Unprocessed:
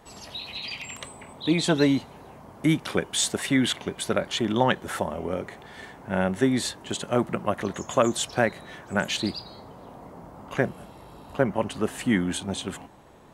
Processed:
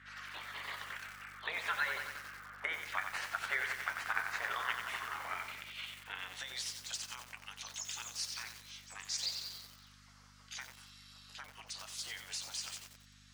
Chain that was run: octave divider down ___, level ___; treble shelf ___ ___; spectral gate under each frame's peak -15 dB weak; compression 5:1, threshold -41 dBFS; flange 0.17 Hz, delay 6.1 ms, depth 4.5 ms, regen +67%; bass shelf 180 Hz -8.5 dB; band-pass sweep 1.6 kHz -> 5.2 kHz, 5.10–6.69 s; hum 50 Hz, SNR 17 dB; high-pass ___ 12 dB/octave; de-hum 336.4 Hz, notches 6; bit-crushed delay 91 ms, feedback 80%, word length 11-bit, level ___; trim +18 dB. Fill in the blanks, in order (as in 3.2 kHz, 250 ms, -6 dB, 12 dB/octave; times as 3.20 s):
1 oct, -6 dB, 2.3 kHz, -6 dB, 64 Hz, -6 dB